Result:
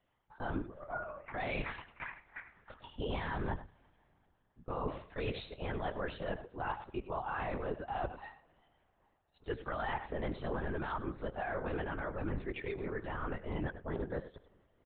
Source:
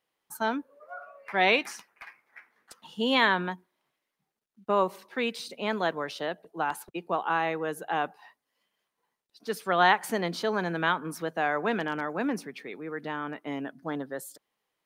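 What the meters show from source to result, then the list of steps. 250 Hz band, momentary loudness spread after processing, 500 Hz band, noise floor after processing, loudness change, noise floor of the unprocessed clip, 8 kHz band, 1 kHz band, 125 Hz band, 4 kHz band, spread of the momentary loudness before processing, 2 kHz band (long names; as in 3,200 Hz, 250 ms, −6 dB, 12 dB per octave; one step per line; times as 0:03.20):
−9.0 dB, 8 LU, −9.0 dB, −76 dBFS, −11.0 dB, −84 dBFS, below −35 dB, −11.5 dB, 0.0 dB, −17.0 dB, 20 LU, −13.0 dB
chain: spectral magnitudes quantised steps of 15 dB
high-shelf EQ 2,700 Hz −9 dB
brickwall limiter −22 dBFS, peak gain reduction 10.5 dB
reversed playback
downward compressor 6 to 1, threshold −41 dBFS, peak gain reduction 14 dB
reversed playback
single-tap delay 95 ms −13.5 dB
coupled-rooms reverb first 0.37 s, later 3.9 s, from −18 dB, DRR 17.5 dB
linear-prediction vocoder at 8 kHz whisper
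level +6 dB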